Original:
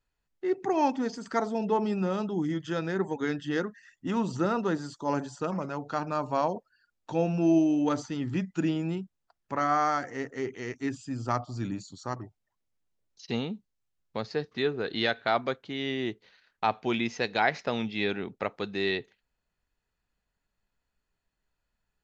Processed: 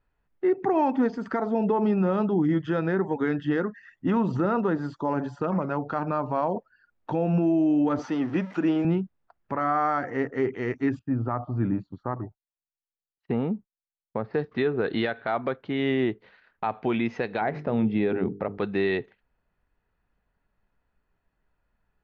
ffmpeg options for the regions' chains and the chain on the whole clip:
-filter_complex "[0:a]asettb=1/sr,asplit=3[s0][s1][s2];[s0]atrim=end=7.994[s3];[s1]atrim=start=7.99:end=8.85,asetpts=PTS-STARTPTS,afade=t=in:d=0.004:c=qsin,afade=t=out:st=0.856:d=0.004:c=qsin,aeval=exprs='val(0)+0.5*0.00841*sgn(val(0))':c=same,highpass=270,equalizer=f=5700:w=5.4:g=8[s4];[s2]atrim=start=8.846[s5];[s3][s4]acrossfade=d=0.004:c1=hsin:c2=qsin[s6];[s6][s5]acrossfade=d=0.004:c1=qsin:c2=hsin,asettb=1/sr,asplit=3[s7][s8][s9];[s7]atrim=end=10.994[s10];[s8]atrim=start=10.99:end=14.34,asetpts=PTS-STARTPTS,afade=t=in:d=0.004:c=qsin,afade=t=out:st=3.346:d=0.004:c=qsin,lowpass=1700,agate=range=0.0224:threshold=0.00158:ratio=3:release=100:detection=peak[s11];[s9]atrim=start=14.336[s12];[s10][s11]acrossfade=d=0.004:c1=hsin:c2=qsin[s13];[s13][s12]acrossfade=d=0.004:c1=qsin:c2=hsin,asettb=1/sr,asplit=3[s14][s15][s16];[s14]atrim=end=17.414[s17];[s15]atrim=start=17.41:end=18.58,asetpts=PTS-STARTPTS,afade=t=in:d=0.004:c=qsin,afade=t=out:st=1.166:d=0.004:c=qsin,tiltshelf=f=750:g=7,bandreject=f=50:t=h:w=6,bandreject=f=100:t=h:w=6,bandreject=f=150:t=h:w=6,bandreject=f=200:t=h:w=6,bandreject=f=250:t=h:w=6,bandreject=f=300:t=h:w=6,bandreject=f=350:t=h:w=6,bandreject=f=400:t=h:w=6,bandreject=f=450:t=h:w=6[s18];[s16]atrim=start=18.576[s19];[s17][s18]acrossfade=d=0.004:c1=hsin:c2=qsin[s20];[s20][s19]acrossfade=d=0.004:c1=qsin:c2=hsin,lowpass=1900,alimiter=limit=0.0668:level=0:latency=1:release=125,volume=2.51"

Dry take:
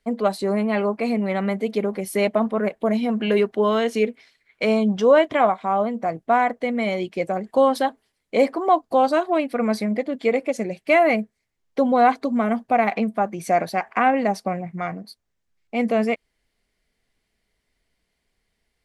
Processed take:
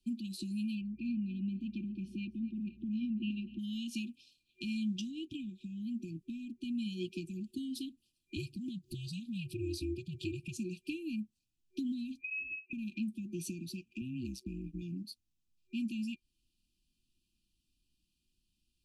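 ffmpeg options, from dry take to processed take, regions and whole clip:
-filter_complex "[0:a]asettb=1/sr,asplit=3[s0][s1][s2];[s0]atrim=end=0.814[s3];[s1]atrim=start=0.81:end=3.59,asetpts=PTS-STARTPTS,afade=t=in:d=0.004:c=qsin,afade=t=out:st=2.776:d=0.004:c=qsin,lowpass=1700,aecho=1:1:247|494|741|988:0.126|0.0642|0.0327|0.0167,atrim=end_sample=122598,aeval=exprs='val(0)+0.00178*(sin(2*PI*60*n/s)+sin(2*PI*2*60*n/s)/2+sin(2*PI*3*60*n/s)/3+sin(2*PI*4*60*n/s)/4+sin(2*PI*5*60*n/s)/5)':c=same[s4];[s2]atrim=start=3.586[s5];[s3][s4]acrossfade=d=0.004:c1=hsin:c2=qsin[s6];[s6][s5]acrossfade=d=0.004:c1=qsin:c2=hsin,asettb=1/sr,asplit=3[s7][s8][s9];[s7]atrim=end=8.364[s10];[s8]atrim=start=8.36:end=10.57,asetpts=PTS-STARTPTS,afade=t=in:d=0.004:c=qsin,afade=t=out:st=2.206:d=0.004:c=qsin,asuperstop=centerf=820:order=4:qfactor=1.5,acompressor=mode=upward:threshold=0.0631:ratio=2.5:attack=3.2:release=140:knee=2.83:detection=peak,aeval=exprs='val(0)*sin(2*PI*130*n/s)':c=same[s11];[s9]atrim=start=10.566[s12];[s10][s11]acrossfade=d=0.004:c1=hsin:c2=qsin[s13];[s13][s12]acrossfade=d=0.004:c1=qsin:c2=hsin,asettb=1/sr,asplit=3[s14][s15][s16];[s14]atrim=end=12.214[s17];[s15]atrim=start=12.21:end=12.73,asetpts=PTS-STARTPTS,afade=t=in:d=0.004:c=qsin,afade=t=out:st=0.516:d=0.004:c=qsin,lowpass=f=2400:t=q:w=0.5098,lowpass=f=2400:t=q:w=0.6013,lowpass=f=2400:t=q:w=0.9,lowpass=f=2400:t=q:w=2.563,afreqshift=-2800,asplit=2[s18][s19];[s19]adelay=28,volume=0.398[s20];[s18][s20]amix=inputs=2:normalize=0,atrim=end_sample=22932[s21];[s16]atrim=start=12.726[s22];[s17][s21]acrossfade=d=0.004:c1=hsin:c2=qsin[s23];[s23][s22]acrossfade=d=0.004:c1=qsin:c2=hsin,asettb=1/sr,asplit=3[s24][s25][s26];[s24]atrim=end=14.014[s27];[s25]atrim=start=14.01:end=14.82,asetpts=PTS-STARTPTS,afade=t=in:d=0.004:c=qsin,afade=t=out:st=0.806:d=0.004:c=qsin,agate=range=0.0224:threshold=0.00501:ratio=3:release=100:detection=peak,tremolo=f=130:d=0.919[s28];[s26]atrim=start=14.816[s29];[s27][s28]acrossfade=d=0.004:c1=hsin:c2=qsin[s30];[s30][s29]acrossfade=d=0.004:c1=qsin:c2=hsin,acrossover=split=190|860[s31][s32][s33];[s31]acompressor=threshold=0.0141:ratio=4[s34];[s32]acompressor=threshold=0.0282:ratio=4[s35];[s33]acompressor=threshold=0.02:ratio=4[s36];[s34][s35][s36]amix=inputs=3:normalize=0,afftfilt=real='re*(1-between(b*sr/4096,370,2400))':imag='im*(1-between(b*sr/4096,370,2400))':win_size=4096:overlap=0.75,volume=0.562"

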